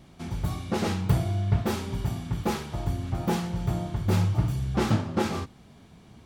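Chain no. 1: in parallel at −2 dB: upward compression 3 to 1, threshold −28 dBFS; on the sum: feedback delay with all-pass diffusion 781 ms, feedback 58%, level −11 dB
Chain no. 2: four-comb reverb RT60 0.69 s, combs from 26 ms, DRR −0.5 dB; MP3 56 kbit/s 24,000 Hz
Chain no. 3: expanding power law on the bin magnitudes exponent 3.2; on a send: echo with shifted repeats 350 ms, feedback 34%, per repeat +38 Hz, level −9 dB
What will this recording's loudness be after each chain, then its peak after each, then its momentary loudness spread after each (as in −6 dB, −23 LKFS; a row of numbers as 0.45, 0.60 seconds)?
−23.0, −27.0, −28.5 LKFS; −5.5, −10.5, −12.0 dBFS; 8, 8, 9 LU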